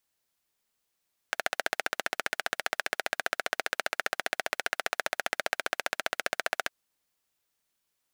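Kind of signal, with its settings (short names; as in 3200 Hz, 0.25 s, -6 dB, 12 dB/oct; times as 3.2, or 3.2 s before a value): single-cylinder engine model, steady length 5.38 s, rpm 1800, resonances 690/1500 Hz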